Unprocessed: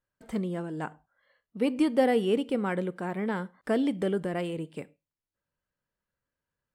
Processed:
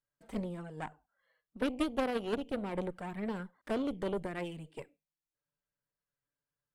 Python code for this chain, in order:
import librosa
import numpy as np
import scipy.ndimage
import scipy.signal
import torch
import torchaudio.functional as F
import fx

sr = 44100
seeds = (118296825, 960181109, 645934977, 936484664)

y = fx.env_flanger(x, sr, rest_ms=6.9, full_db=-25.0)
y = fx.cheby_harmonics(y, sr, harmonics=(2, 3, 6, 8), levels_db=(-7, -20, -21, -14), full_scale_db=-12.0)
y = fx.rider(y, sr, range_db=4, speed_s=0.5)
y = y * 10.0 ** (-5.0 / 20.0)